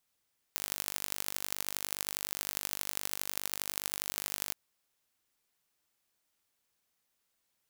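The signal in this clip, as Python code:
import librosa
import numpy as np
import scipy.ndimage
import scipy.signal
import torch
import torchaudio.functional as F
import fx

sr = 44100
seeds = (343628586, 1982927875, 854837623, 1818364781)

y = fx.impulse_train(sr, length_s=3.98, per_s=49.7, accent_every=4, level_db=-5.0)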